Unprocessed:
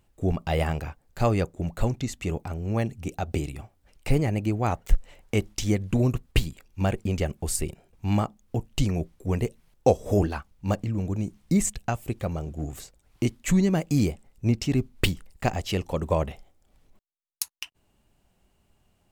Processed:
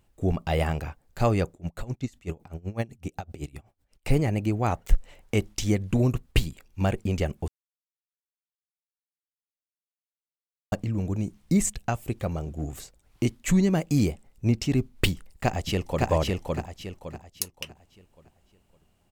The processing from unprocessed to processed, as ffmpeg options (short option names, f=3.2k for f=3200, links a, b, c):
-filter_complex "[0:a]asettb=1/sr,asplit=3[a][b][c];[a]atrim=end=1.544[d];[b]atrim=start=1.54:end=4.09,asetpts=PTS-STARTPTS,afade=t=in:d=0.004:c=qsin,afade=t=out:st=2.546:d=0.004:c=qsin,aeval=exprs='val(0)*pow(10,-22*(0.5-0.5*cos(2*PI*7.9*n/s))/20)':c=same[e];[c]atrim=start=4.086[f];[d][e]acrossfade=d=0.004:c1=hsin:c2=qsin[g];[g][f]acrossfade=d=0.004:c1=qsin:c2=hsin,asplit=2[h][i];[i]afade=t=in:st=15.11:d=0.01,afade=t=out:st=16.09:d=0.01,aecho=0:1:560|1120|1680|2240|2800:0.841395|0.294488|0.103071|0.0360748|0.0126262[j];[h][j]amix=inputs=2:normalize=0,asplit=3[k][l][m];[k]atrim=end=7.48,asetpts=PTS-STARTPTS,afade=t=out:st=7.476:d=0.004:c=hsin[n];[l]atrim=start=7.48:end=10.72,asetpts=PTS-STARTPTS,volume=0[o];[m]atrim=start=10.72,asetpts=PTS-STARTPTS,afade=t=in:d=0.004:c=hsin[p];[n][o][p]concat=n=3:v=0:a=1"